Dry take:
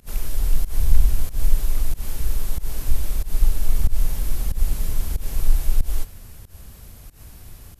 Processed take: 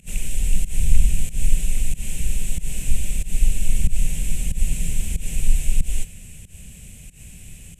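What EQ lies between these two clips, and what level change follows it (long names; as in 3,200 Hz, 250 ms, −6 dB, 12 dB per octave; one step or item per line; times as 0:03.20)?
drawn EQ curve 110 Hz 0 dB, 170 Hz +9 dB, 310 Hz −4 dB, 530 Hz −3 dB, 1,200 Hz −15 dB, 2,600 Hz +11 dB, 4,700 Hz −7 dB, 7,900 Hz +13 dB, 13,000 Hz −7 dB
0.0 dB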